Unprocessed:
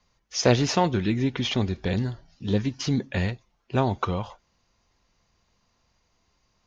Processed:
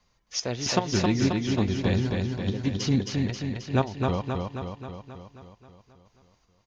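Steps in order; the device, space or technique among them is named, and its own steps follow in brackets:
trance gate with a delay (gate pattern "xxx..x.xxx..x" 114 BPM −12 dB; repeating echo 267 ms, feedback 60%, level −3.5 dB)

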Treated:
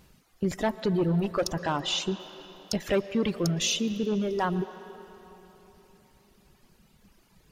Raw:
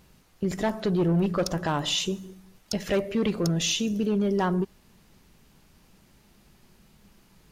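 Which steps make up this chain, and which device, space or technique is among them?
reverb reduction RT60 1.6 s
0:01.80–0:02.20: high-frequency loss of the air 57 metres
filtered reverb send (on a send: high-pass filter 280 Hz 12 dB per octave + low-pass filter 4,500 Hz 12 dB per octave + convolution reverb RT60 3.6 s, pre-delay 108 ms, DRR 12.5 dB)

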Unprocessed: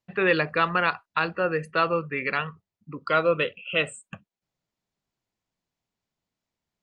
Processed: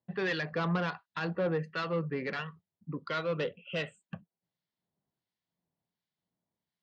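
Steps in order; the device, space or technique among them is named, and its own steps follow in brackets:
guitar amplifier with harmonic tremolo (two-band tremolo in antiphase 1.4 Hz, depth 70%, crossover 1,300 Hz; soft clipping −25 dBFS, distortion −10 dB; loudspeaker in its box 83–4,500 Hz, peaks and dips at 170 Hz +6 dB, 1,300 Hz −6 dB, 2,500 Hz −8 dB)

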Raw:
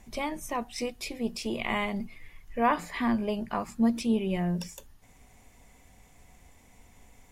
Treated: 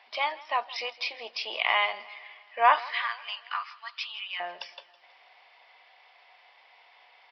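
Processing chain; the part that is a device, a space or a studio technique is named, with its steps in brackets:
0:02.80–0:04.40: Chebyshev band-pass filter 1,200–6,400 Hz, order 3
musical greeting card (downsampling to 11,025 Hz; high-pass filter 690 Hz 24 dB per octave; parametric band 3,000 Hz +4 dB 0.32 octaves)
repeating echo 162 ms, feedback 58%, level −20.5 dB
level +6.5 dB

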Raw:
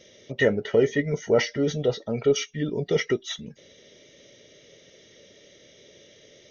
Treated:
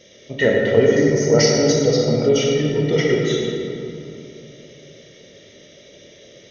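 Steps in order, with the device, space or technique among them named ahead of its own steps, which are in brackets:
stairwell (convolution reverb RT60 2.9 s, pre-delay 24 ms, DRR −2.5 dB)
0:00.96–0:02.29: high shelf with overshoot 4,000 Hz +7 dB, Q 3
level +3 dB

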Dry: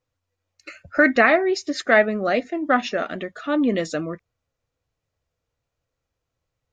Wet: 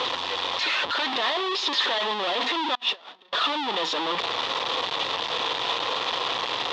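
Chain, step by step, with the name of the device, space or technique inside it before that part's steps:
home computer beeper (sign of each sample alone; loudspeaker in its box 580–4,000 Hz, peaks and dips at 620 Hz −6 dB, 1,000 Hz +6 dB, 1,500 Hz −8 dB, 2,200 Hz −6 dB, 3,500 Hz +9 dB)
0:02.75–0:03.33: noise gate −23 dBFS, range −32 dB
level +2.5 dB

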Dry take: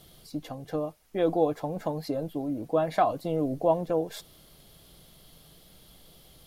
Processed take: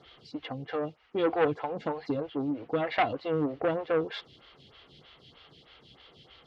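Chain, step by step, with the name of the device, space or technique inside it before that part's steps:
vibe pedal into a guitar amplifier (phaser with staggered stages 3.2 Hz; tube saturation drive 23 dB, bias 0.25; loudspeaker in its box 79–4,300 Hz, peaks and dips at 180 Hz −10 dB, 310 Hz −4 dB, 620 Hz −8 dB, 1,300 Hz +4 dB, 2,000 Hz +4 dB, 2,900 Hz +7 dB)
level +6.5 dB

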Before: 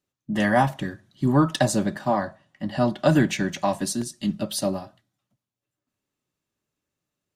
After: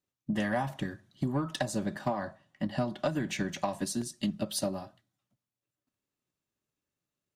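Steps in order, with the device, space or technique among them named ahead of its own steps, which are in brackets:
drum-bus smash (transient designer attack +8 dB, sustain +2 dB; downward compressor 6 to 1, threshold −19 dBFS, peak gain reduction 12 dB; soft clipping −13 dBFS, distortion −19 dB)
level −6.5 dB

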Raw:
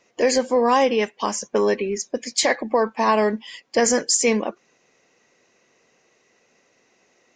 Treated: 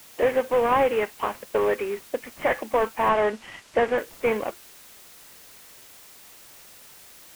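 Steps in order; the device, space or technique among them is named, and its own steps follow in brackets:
army field radio (band-pass filter 390–2,900 Hz; variable-slope delta modulation 16 kbit/s; white noise bed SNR 22 dB)
0:03.09–0:03.98: low-pass filter 7,700 Hz 12 dB per octave

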